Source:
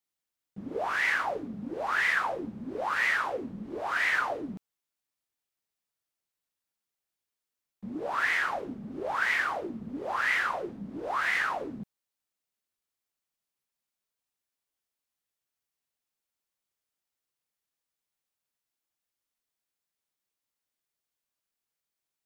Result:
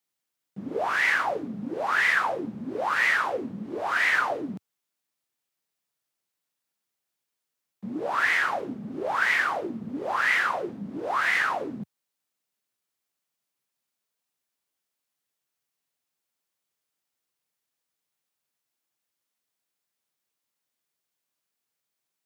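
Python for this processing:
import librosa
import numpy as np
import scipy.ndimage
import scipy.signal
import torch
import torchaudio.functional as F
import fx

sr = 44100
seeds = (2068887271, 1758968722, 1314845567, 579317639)

y = scipy.signal.sosfilt(scipy.signal.butter(4, 98.0, 'highpass', fs=sr, output='sos'), x)
y = F.gain(torch.from_numpy(y), 4.0).numpy()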